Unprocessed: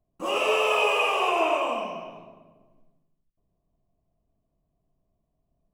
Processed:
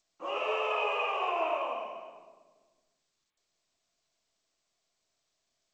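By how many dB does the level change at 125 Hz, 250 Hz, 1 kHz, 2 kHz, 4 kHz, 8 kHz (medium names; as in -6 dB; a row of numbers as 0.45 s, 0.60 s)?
under -15 dB, -13.0 dB, -6.5 dB, -9.0 dB, -10.5 dB, under -20 dB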